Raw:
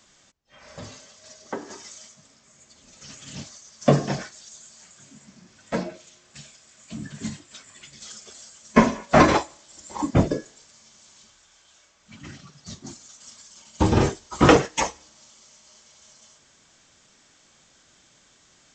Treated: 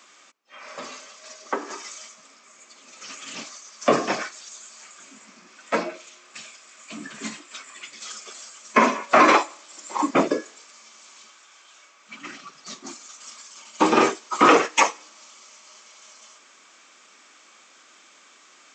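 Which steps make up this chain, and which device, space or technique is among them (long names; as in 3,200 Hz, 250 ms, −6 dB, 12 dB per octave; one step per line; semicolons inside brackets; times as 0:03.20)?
laptop speaker (high-pass filter 260 Hz 24 dB per octave; parametric band 1,200 Hz +9.5 dB 0.49 octaves; parametric band 2,400 Hz +8 dB 0.44 octaves; brickwall limiter −7.5 dBFS, peak gain reduction 8.5 dB)
level +3 dB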